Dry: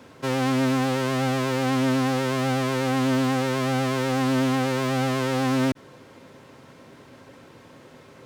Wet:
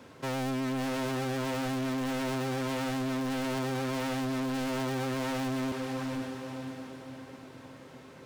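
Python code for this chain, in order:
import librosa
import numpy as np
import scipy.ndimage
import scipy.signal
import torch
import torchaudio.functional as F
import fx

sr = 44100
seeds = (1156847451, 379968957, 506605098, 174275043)

y = fx.echo_diffused(x, sr, ms=492, feedback_pct=46, wet_db=-8.0)
y = np.clip(y, -10.0 ** (-27.0 / 20.0), 10.0 ** (-27.0 / 20.0))
y = y * librosa.db_to_amplitude(-3.5)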